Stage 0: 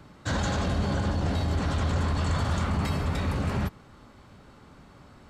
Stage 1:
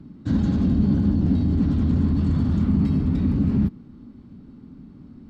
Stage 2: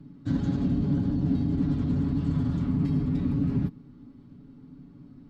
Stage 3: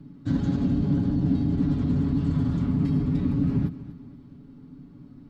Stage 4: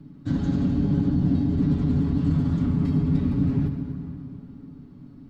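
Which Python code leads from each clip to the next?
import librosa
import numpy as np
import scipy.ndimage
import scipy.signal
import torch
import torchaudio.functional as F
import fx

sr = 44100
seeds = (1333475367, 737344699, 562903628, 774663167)

y1 = fx.curve_eq(x, sr, hz=(110.0, 250.0, 550.0, 1600.0, 4700.0, 7400.0), db=(0, 11, -13, -16, -14, -22))
y1 = y1 * 10.0 ** (4.0 / 20.0)
y2 = y1 + 0.65 * np.pad(y1, (int(7.1 * sr / 1000.0), 0))[:len(y1)]
y2 = y2 * 10.0 ** (-6.0 / 20.0)
y3 = fx.echo_feedback(y2, sr, ms=243, feedback_pct=37, wet_db=-15)
y3 = y3 * 10.0 ** (2.0 / 20.0)
y4 = fx.rev_plate(y3, sr, seeds[0], rt60_s=3.4, hf_ratio=0.65, predelay_ms=0, drr_db=6.0)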